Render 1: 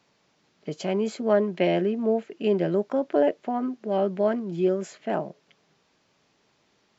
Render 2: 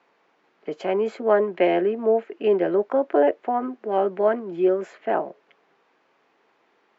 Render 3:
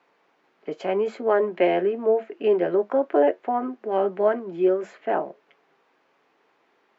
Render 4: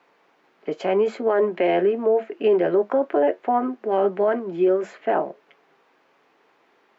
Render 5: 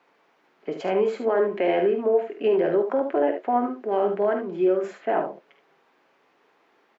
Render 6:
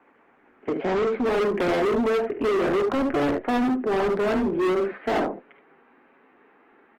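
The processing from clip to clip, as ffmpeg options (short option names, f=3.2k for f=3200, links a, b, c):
-filter_complex "[0:a]acrossover=split=300 2500:gain=0.0708 1 0.112[a][b][c];[a][b][c]amix=inputs=3:normalize=0,bandreject=f=600:w=12,volume=6.5dB"
-af "flanger=delay=6.6:depth=1:regen=-74:speed=0.94:shape=sinusoidal,volume=3.5dB"
-af "alimiter=limit=-15.5dB:level=0:latency=1:release=15,volume=4dB"
-af "aecho=1:1:49|74:0.316|0.398,volume=-3dB"
-af "highpass=f=150:w=0.5412,highpass=f=150:w=1.3066,equalizer=f=250:t=q:w=4:g=8,equalizer=f=610:t=q:w=4:g=-6,equalizer=f=1k:t=q:w=4:g=-3,lowpass=f=2.3k:w=0.5412,lowpass=f=2.3k:w=1.3066,asoftclip=type=hard:threshold=-27.5dB,volume=7dB" -ar 48000 -c:a libopus -b:a 16k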